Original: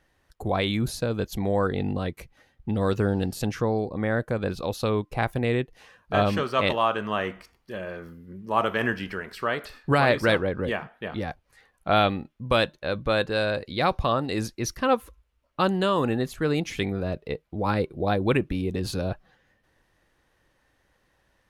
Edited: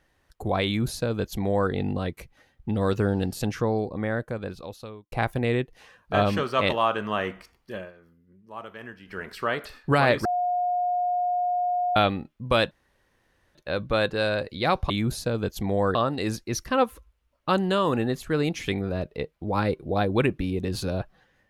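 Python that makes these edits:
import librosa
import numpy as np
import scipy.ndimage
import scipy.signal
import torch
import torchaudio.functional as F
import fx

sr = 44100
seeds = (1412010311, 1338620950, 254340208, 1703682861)

y = fx.edit(x, sr, fx.duplicate(start_s=0.66, length_s=1.05, to_s=14.06),
    fx.fade_out_span(start_s=3.81, length_s=1.31),
    fx.fade_down_up(start_s=7.76, length_s=1.46, db=-15.5, fade_s=0.16),
    fx.bleep(start_s=10.25, length_s=1.71, hz=716.0, db=-22.0),
    fx.insert_room_tone(at_s=12.71, length_s=0.84), tone=tone)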